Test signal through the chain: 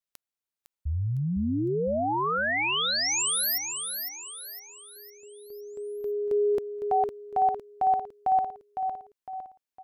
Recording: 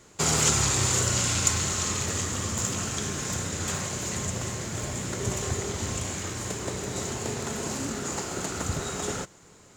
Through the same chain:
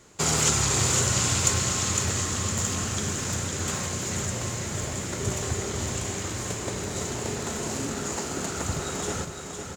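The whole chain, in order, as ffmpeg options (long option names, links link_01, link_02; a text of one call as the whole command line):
ffmpeg -i in.wav -af "aecho=1:1:507|1014|1521|2028|2535:0.473|0.203|0.0875|0.0376|0.0162" out.wav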